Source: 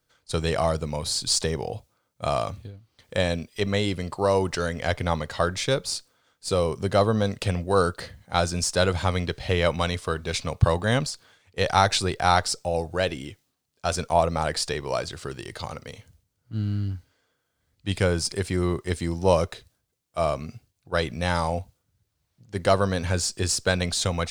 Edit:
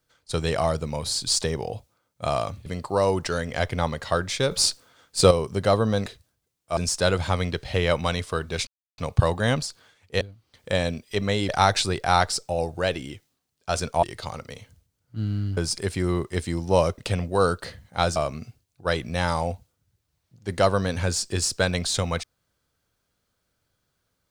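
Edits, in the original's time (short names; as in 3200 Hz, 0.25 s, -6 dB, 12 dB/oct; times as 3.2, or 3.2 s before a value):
2.66–3.94 move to 11.65
5.79–6.59 gain +8.5 dB
7.34–8.52 swap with 19.52–20.23
10.42 insert silence 0.31 s
14.19–15.4 cut
16.94–18.11 cut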